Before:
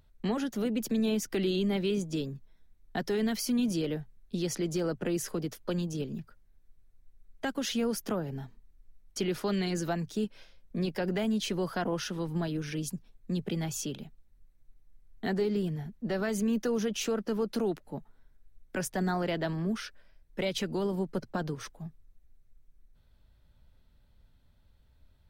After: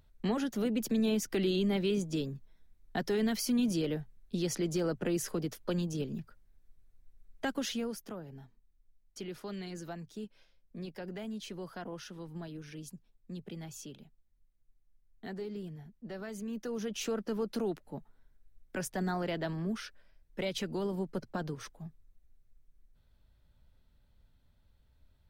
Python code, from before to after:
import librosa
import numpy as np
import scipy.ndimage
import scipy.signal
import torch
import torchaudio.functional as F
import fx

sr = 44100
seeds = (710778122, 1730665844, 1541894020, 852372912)

y = fx.gain(x, sr, db=fx.line((7.56, -1.0), (8.08, -11.0), (16.46, -11.0), (17.06, -3.5)))